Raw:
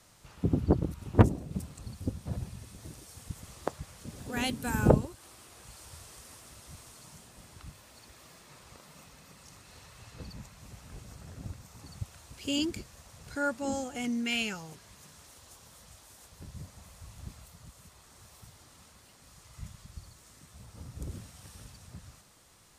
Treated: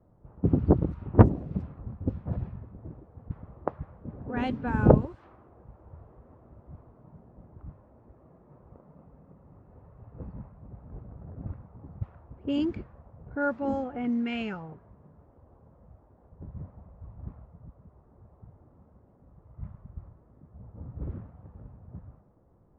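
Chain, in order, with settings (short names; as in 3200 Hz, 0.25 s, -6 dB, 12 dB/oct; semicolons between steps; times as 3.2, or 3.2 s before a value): low-pass opened by the level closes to 520 Hz, open at -26 dBFS; LPF 1400 Hz 12 dB/oct; gain +4 dB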